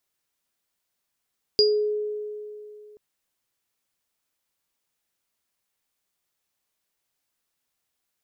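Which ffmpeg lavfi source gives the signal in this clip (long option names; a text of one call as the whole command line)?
ffmpeg -f lavfi -i "aevalsrc='0.158*pow(10,-3*t/2.75)*sin(2*PI*421*t)+0.224*pow(10,-3*t/0.29)*sin(2*PI*4850*t)':duration=1.38:sample_rate=44100" out.wav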